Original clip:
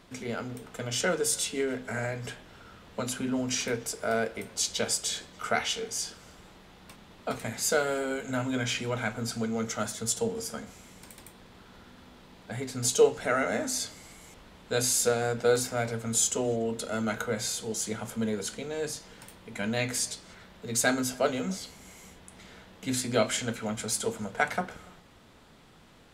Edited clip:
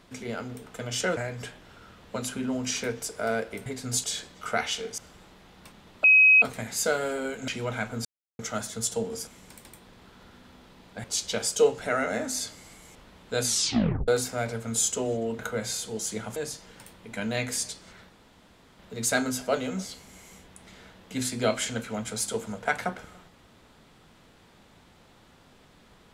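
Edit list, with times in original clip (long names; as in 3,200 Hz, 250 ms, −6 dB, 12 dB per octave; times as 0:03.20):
0:01.17–0:02.01: remove
0:04.50–0:05.02: swap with 0:12.57–0:12.95
0:05.96–0:06.22: remove
0:07.28: insert tone 2,540 Hz −13 dBFS 0.38 s
0:08.34–0:08.73: remove
0:09.30–0:09.64: silence
0:10.52–0:10.80: remove
0:14.84: tape stop 0.63 s
0:16.78–0:17.14: remove
0:18.11–0:18.78: remove
0:20.51: splice in room tone 0.70 s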